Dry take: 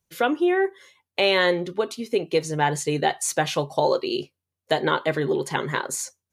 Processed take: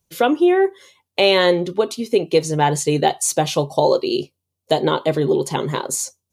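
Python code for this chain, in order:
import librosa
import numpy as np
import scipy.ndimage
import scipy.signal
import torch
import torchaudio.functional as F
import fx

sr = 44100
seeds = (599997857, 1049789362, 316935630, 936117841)

y = fx.peak_eq(x, sr, hz=1700.0, db=fx.steps((0.0, -7.0), (3.08, -13.0)), octaves=1.0)
y = y * 10.0 ** (6.5 / 20.0)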